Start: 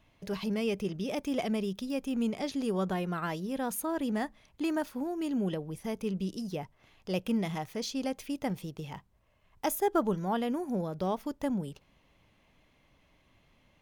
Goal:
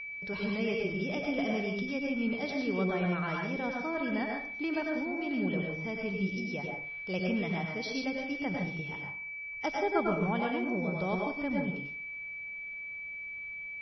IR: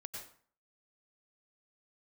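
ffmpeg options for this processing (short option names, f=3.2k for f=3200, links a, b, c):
-filter_complex "[1:a]atrim=start_sample=2205[a];[0:a][a]afir=irnorm=-1:irlink=0,aeval=exprs='val(0)+0.00891*sin(2*PI*2300*n/s)':c=same,volume=3dB" -ar 22050 -c:a libmp3lame -b:a 24k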